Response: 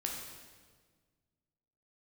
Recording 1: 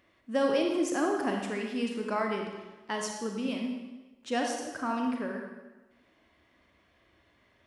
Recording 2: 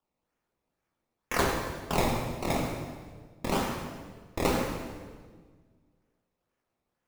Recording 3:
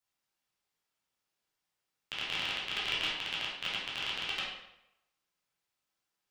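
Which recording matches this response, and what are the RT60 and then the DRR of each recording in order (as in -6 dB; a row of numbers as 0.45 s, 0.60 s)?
2; 1.2 s, 1.6 s, 0.85 s; 1.5 dB, -0.5 dB, -7.5 dB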